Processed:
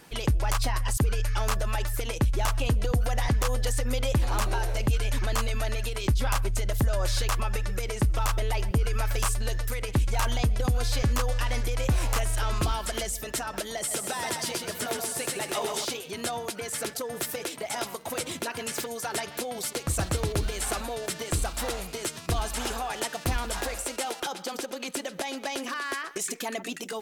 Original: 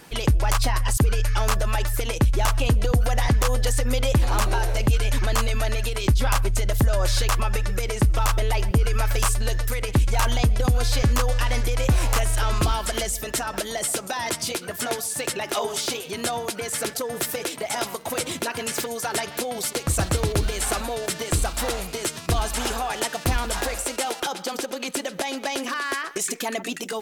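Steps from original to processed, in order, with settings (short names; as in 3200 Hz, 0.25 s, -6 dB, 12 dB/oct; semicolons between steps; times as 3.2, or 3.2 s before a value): 13.78–15.85 lo-fi delay 0.128 s, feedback 55%, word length 9-bit, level -4.5 dB; gain -5 dB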